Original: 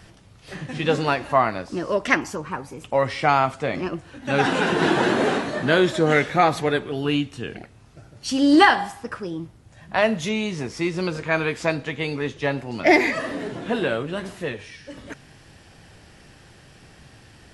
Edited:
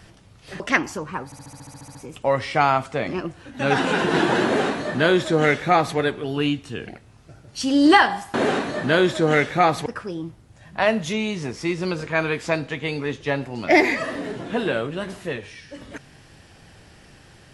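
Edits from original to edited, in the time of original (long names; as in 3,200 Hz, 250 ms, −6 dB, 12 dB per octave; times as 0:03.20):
0:00.60–0:01.98: remove
0:02.63: stutter 0.07 s, 11 plays
0:05.13–0:06.65: duplicate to 0:09.02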